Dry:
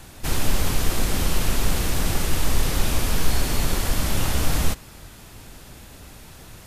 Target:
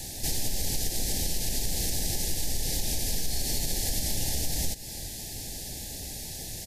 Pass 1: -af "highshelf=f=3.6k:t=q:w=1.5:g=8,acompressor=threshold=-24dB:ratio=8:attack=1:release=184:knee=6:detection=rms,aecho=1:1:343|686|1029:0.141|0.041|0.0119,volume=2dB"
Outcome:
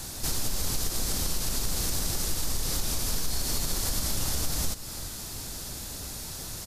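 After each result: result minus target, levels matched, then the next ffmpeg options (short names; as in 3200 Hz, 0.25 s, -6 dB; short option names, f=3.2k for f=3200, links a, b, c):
echo-to-direct +6.5 dB; 1000 Hz band +4.0 dB
-af "highshelf=f=3.6k:t=q:w=1.5:g=8,acompressor=threshold=-24dB:ratio=8:attack=1:release=184:knee=6:detection=rms,aecho=1:1:343|686:0.0668|0.0194,volume=2dB"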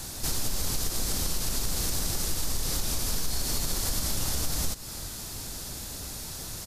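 1000 Hz band +4.0 dB
-af "asuperstop=centerf=1200:order=12:qfactor=1.6,highshelf=f=3.6k:t=q:w=1.5:g=8,acompressor=threshold=-24dB:ratio=8:attack=1:release=184:knee=6:detection=rms,aecho=1:1:343|686:0.0668|0.0194,volume=2dB"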